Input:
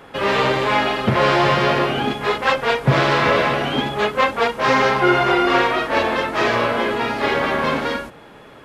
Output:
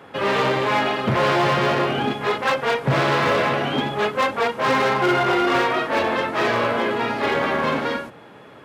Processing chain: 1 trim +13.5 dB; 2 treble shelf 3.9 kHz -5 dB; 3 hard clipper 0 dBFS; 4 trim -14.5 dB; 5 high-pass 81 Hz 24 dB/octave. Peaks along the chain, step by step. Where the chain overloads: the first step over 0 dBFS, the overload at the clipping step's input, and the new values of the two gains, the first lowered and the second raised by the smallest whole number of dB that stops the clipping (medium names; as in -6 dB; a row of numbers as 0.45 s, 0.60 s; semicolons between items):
+10.0 dBFS, +9.5 dBFS, 0.0 dBFS, -14.5 dBFS, -8.5 dBFS; step 1, 9.5 dB; step 1 +3.5 dB, step 4 -4.5 dB